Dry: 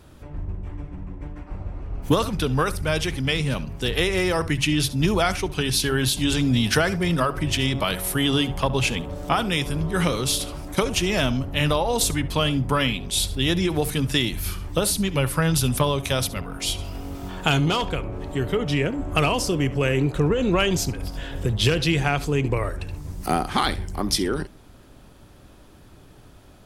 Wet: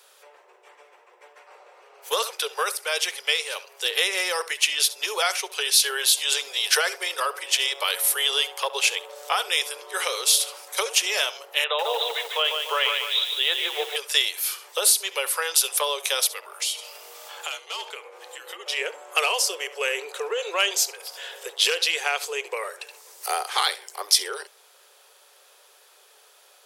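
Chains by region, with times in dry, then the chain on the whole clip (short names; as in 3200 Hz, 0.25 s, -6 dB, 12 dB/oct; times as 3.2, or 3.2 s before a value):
11.64–13.96 brick-wall FIR band-pass 330–4000 Hz + lo-fi delay 0.148 s, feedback 55%, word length 7-bit, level -5 dB
16.27–18.66 frequency shift -79 Hz + compressor, threshold -26 dBFS
whole clip: steep high-pass 420 Hz 72 dB/oct; high shelf 2200 Hz +11 dB; notch 650 Hz, Q 12; gain -4 dB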